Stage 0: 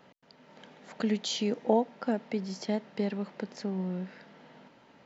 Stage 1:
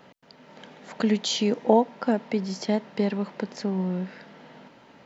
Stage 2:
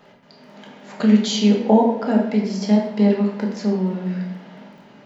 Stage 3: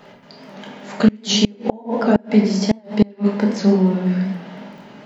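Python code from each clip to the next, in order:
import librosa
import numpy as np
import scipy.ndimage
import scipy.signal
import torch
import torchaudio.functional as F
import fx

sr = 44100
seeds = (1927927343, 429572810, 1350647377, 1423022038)

y1 = fx.dynamic_eq(x, sr, hz=990.0, q=7.3, threshold_db=-59.0, ratio=4.0, max_db=5)
y1 = y1 * 10.0 ** (6.0 / 20.0)
y2 = fx.dmg_crackle(y1, sr, seeds[0], per_s=10.0, level_db=-45.0)
y2 = fx.room_shoebox(y2, sr, seeds[1], volume_m3=300.0, walls='mixed', distance_m=1.3)
y3 = fx.gate_flip(y2, sr, shuts_db=-8.0, range_db=-30)
y3 = fx.record_warp(y3, sr, rpm=78.0, depth_cents=100.0)
y3 = y3 * 10.0 ** (6.0 / 20.0)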